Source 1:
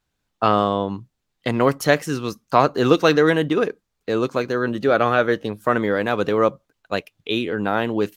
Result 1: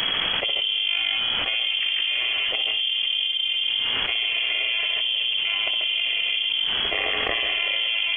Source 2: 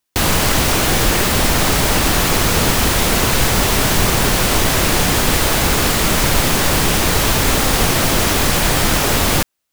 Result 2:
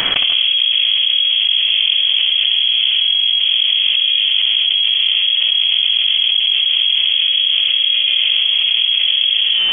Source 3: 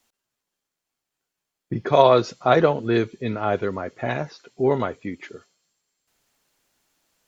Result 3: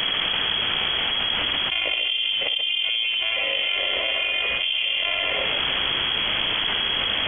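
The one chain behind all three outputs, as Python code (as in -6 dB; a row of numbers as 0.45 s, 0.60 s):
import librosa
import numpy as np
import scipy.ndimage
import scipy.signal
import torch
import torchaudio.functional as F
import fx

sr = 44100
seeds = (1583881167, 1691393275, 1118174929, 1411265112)

p1 = fx.bit_reversed(x, sr, seeds[0], block=128)
p2 = fx.env_lowpass_down(p1, sr, base_hz=370.0, full_db=-15.0)
p3 = fx.low_shelf(p2, sr, hz=140.0, db=-9.0)
p4 = fx.hpss(p3, sr, part='percussive', gain_db=-9)
p5 = fx.band_shelf(p4, sr, hz=830.0, db=8.0, octaves=1.3)
p6 = fx.level_steps(p5, sr, step_db=15)
p7 = p5 + (p6 * librosa.db_to_amplitude(-1.0))
p8 = fx.comb_fb(p7, sr, f0_hz=120.0, decay_s=1.2, harmonics='all', damping=0.0, mix_pct=70)
p9 = fx.dmg_noise_colour(p8, sr, seeds[1], colour='pink', level_db=-66.0)
p10 = fx.echo_multitap(p9, sr, ms=(62, 137, 158), db=(-7.5, -7.0, -8.0))
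p11 = fx.freq_invert(p10, sr, carrier_hz=3300)
p12 = fx.env_flatten(p11, sr, amount_pct=100)
y = p12 * librosa.db_to_amplitude(8.5)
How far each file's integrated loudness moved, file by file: -0.5 LU, +3.0 LU, +0.5 LU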